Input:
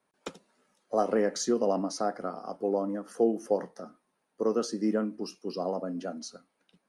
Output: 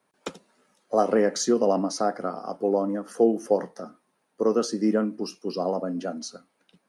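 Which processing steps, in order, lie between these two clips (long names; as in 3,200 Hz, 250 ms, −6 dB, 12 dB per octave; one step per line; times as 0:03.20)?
high-pass filter 48 Hz
level +5 dB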